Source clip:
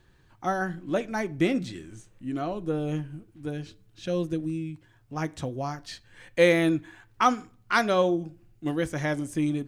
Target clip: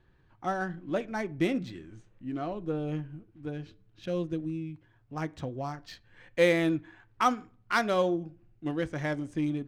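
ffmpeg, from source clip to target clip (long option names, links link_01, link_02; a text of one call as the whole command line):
ffmpeg -i in.wav -af "adynamicsmooth=sensitivity=7.5:basefreq=3500,volume=-3.5dB" out.wav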